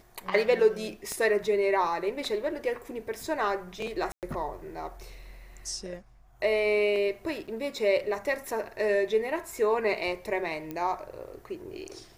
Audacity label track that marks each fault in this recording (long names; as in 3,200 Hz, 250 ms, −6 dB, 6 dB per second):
1.120000	1.120000	click −20 dBFS
4.120000	4.230000	drop-out 108 ms
7.470000	7.480000	drop-out 7 ms
10.710000	10.710000	click −22 dBFS